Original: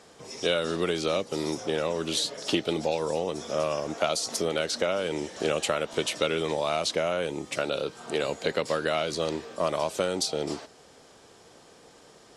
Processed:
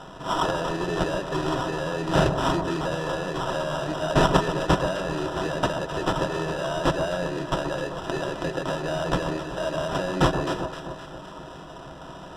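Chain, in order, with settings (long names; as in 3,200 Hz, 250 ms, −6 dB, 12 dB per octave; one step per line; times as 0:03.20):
in parallel at +3 dB: downward compressor, threshold −34 dBFS, peak gain reduction 13 dB
on the sum: soft clipping −21 dBFS, distortion −11 dB
high shelf with overshoot 3,900 Hz +11.5 dB, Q 1.5
sample-rate reduction 2,200 Hz, jitter 0%
high-frequency loss of the air 77 metres
delay that swaps between a low-pass and a high-pass 130 ms, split 1,200 Hz, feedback 74%, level −8 dB
on a send at −7 dB: convolution reverb, pre-delay 3 ms
on the sum: level −2.5 dB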